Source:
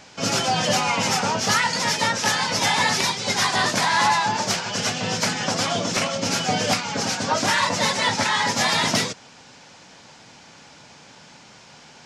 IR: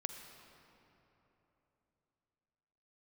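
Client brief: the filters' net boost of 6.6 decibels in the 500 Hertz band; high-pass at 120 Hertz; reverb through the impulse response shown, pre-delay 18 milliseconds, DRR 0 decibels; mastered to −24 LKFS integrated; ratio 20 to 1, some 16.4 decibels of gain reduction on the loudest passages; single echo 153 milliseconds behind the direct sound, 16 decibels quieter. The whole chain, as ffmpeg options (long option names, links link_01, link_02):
-filter_complex "[0:a]highpass=120,equalizer=frequency=500:width_type=o:gain=8,acompressor=threshold=-30dB:ratio=20,aecho=1:1:153:0.158,asplit=2[link_01][link_02];[1:a]atrim=start_sample=2205,adelay=18[link_03];[link_02][link_03]afir=irnorm=-1:irlink=0,volume=1dB[link_04];[link_01][link_04]amix=inputs=2:normalize=0,volume=6dB"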